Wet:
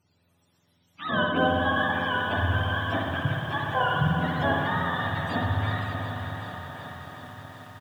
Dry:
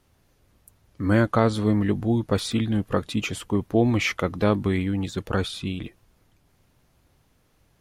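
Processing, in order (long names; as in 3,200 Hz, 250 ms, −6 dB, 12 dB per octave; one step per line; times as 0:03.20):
frequency axis turned over on the octave scale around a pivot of 590 Hz
treble cut that deepens with the level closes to 2,300 Hz, closed at −23 dBFS
on a send: repeating echo 589 ms, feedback 55%, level −11 dB
on the sum: spring reverb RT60 1.8 s, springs 58 ms, chirp 55 ms, DRR 0 dB
feedback echo at a low word length 375 ms, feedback 80%, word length 8 bits, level −10.5 dB
level −4 dB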